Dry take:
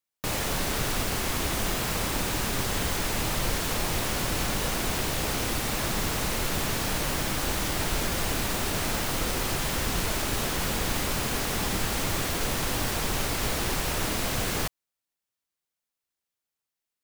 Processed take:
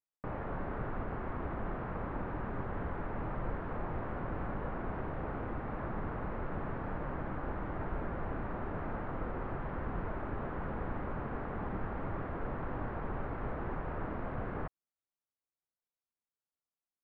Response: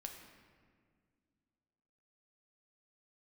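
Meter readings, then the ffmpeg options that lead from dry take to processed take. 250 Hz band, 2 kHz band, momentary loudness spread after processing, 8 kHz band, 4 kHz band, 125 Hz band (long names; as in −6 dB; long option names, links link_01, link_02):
−7.5 dB, −14.5 dB, 1 LU, below −40 dB, below −35 dB, −7.5 dB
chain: -af "lowpass=frequency=1500:width=0.5412,lowpass=frequency=1500:width=1.3066,volume=-7.5dB"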